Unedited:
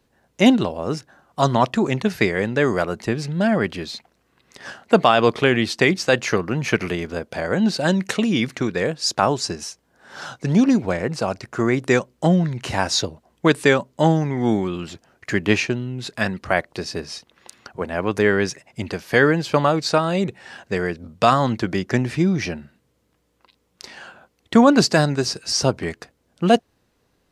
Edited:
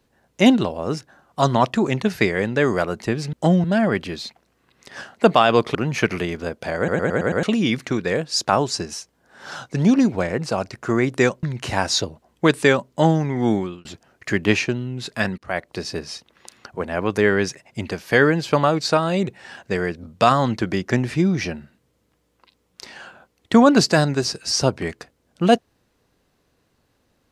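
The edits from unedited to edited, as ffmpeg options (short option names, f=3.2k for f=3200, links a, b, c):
-filter_complex "[0:a]asplit=13[a][b][c][d][e][f][g][h][i][j][k][l][m];[a]atrim=end=3.332[n];[b]atrim=start=12.128:end=12.442[o];[c]atrim=start=3.328:end=5.442[p];[d]atrim=start=6.448:end=7.582[q];[e]atrim=start=7.468:end=7.582[r];[f]atrim=start=7.468:end=7.582[s];[g]atrim=start=7.468:end=7.582[t];[h]atrim=start=7.468:end=7.582[u];[i]atrim=start=7.468:end=7.582[v];[j]atrim=start=8.128:end=12.132[w];[k]atrim=start=12.438:end=14.86,asetpts=PTS-STARTPTS,afade=t=out:st=2.142:d=0.28[x];[l]atrim=start=14.86:end=16.39,asetpts=PTS-STARTPTS,afade=t=in:d=0.004:c=hsin,afade=t=out:st=1.526:d=0.004:c=hsin:silence=0.0841395[y];[m]atrim=start=16.39,asetpts=PTS-STARTPTS,afade=t=in:d=0.5:c=qsin:silence=0.0841395[z];[n][o]acrossfade=d=0.004:c1=hsin:c2=hsin[aa];[aa][p]acrossfade=d=0.004:c1=hsin:c2=hsin[ab];[ab][q]acrossfade=d=0.004:c1=hsin:c2=hsin[ac];[ac][r]acrossfade=d=0.004:c1=hsin:c2=hsin[ad];[ad][s]acrossfade=d=0.004:c1=hsin:c2=hsin[ae];[ae][t]acrossfade=d=0.004:c1=hsin:c2=hsin[af];[af][u]acrossfade=d=0.004:c1=hsin:c2=hsin[ag];[ag][v]acrossfade=d=0.004:c1=hsin:c2=hsin[ah];[ah][w]acrossfade=d=0.004:c1=hsin:c2=hsin[ai];[x][y][z]concat=n=3:v=0:a=1[aj];[ai][aj]acrossfade=d=0.004:c1=hsin:c2=hsin"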